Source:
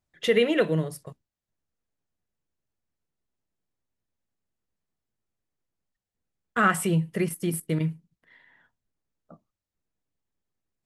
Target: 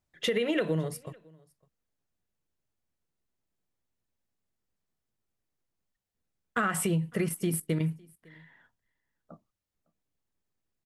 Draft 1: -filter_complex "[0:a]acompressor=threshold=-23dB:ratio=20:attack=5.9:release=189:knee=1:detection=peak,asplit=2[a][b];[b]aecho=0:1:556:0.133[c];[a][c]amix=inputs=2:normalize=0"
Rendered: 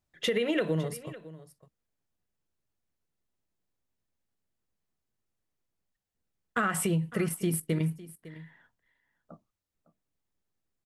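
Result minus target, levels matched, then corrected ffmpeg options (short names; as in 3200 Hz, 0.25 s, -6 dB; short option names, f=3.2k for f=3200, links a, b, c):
echo-to-direct +9.5 dB
-filter_complex "[0:a]acompressor=threshold=-23dB:ratio=20:attack=5.9:release=189:knee=1:detection=peak,asplit=2[a][b];[b]aecho=0:1:556:0.0447[c];[a][c]amix=inputs=2:normalize=0"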